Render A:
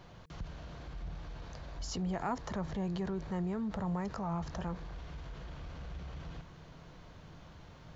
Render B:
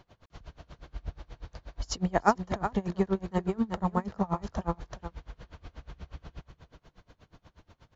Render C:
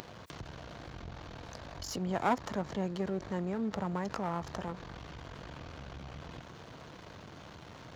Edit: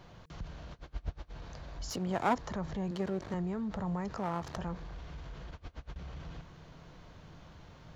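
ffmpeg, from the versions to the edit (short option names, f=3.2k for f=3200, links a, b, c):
-filter_complex "[1:a]asplit=2[a][b];[2:a]asplit=3[c][d][e];[0:a]asplit=6[f][g][h][i][j][k];[f]atrim=end=0.712[l];[a]atrim=start=0.708:end=1.312[m];[g]atrim=start=1.308:end=1.902[n];[c]atrim=start=1.898:end=2.352[o];[h]atrim=start=2.348:end=2.912[p];[d]atrim=start=2.908:end=3.342[q];[i]atrim=start=3.338:end=4.172[r];[e]atrim=start=4.168:end=4.572[s];[j]atrim=start=4.568:end=5.512[t];[b]atrim=start=5.508:end=5.962[u];[k]atrim=start=5.958[v];[l][m]acrossfade=d=0.004:c1=hsin:c2=hsin[w];[w][n]acrossfade=d=0.004:c1=hsin:c2=hsin[x];[x][o]acrossfade=d=0.004:c1=hsin:c2=hsin[y];[y][p]acrossfade=d=0.004:c1=hsin:c2=hsin[z];[z][q]acrossfade=d=0.004:c1=hsin:c2=hsin[aa];[aa][r]acrossfade=d=0.004:c1=hsin:c2=hsin[ab];[ab][s]acrossfade=d=0.004:c1=hsin:c2=hsin[ac];[ac][t]acrossfade=d=0.004:c1=hsin:c2=hsin[ad];[ad][u]acrossfade=d=0.004:c1=hsin:c2=hsin[ae];[ae][v]acrossfade=d=0.004:c1=hsin:c2=hsin"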